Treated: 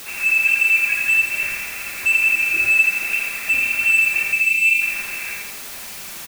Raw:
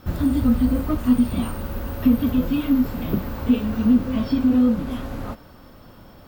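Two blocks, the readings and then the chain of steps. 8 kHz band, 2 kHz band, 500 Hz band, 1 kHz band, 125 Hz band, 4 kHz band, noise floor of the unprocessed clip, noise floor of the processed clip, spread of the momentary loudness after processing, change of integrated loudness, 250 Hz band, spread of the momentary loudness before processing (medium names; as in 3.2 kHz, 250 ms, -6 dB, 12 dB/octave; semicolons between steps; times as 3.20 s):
no reading, +26.5 dB, under -10 dB, -3.0 dB, under -20 dB, +7.5 dB, -46 dBFS, -34 dBFS, 14 LU, +5.5 dB, under -25 dB, 12 LU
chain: steep high-pass 180 Hz 36 dB/octave; dynamic bell 550 Hz, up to +4 dB, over -39 dBFS, Q 3.4; hum notches 60/120/180/240/300/360/420/480 Hz; frequency inversion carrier 2.9 kHz; treble shelf 2.2 kHz +2.5 dB; word length cut 6-bit, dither triangular; saturation -11 dBFS, distortion -18 dB; delay 80 ms -5 dB; time-frequency box 4.32–4.81 s, 360–2000 Hz -29 dB; bit-crushed delay 85 ms, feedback 55%, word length 8-bit, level -5 dB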